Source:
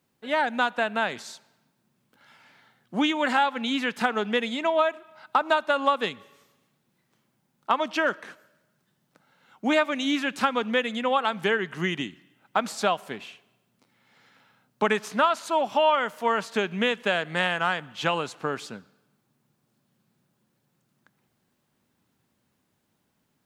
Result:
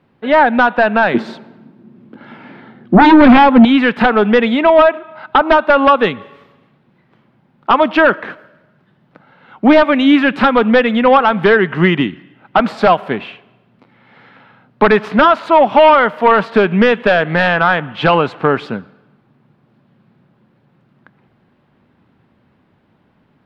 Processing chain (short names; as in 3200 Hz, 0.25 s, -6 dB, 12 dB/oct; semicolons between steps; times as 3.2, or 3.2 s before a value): 1.14–3.65 small resonant body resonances 230/330 Hz, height 14 dB, ringing for 30 ms; sine folder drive 11 dB, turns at -4.5 dBFS; air absorption 420 m; gain +3.5 dB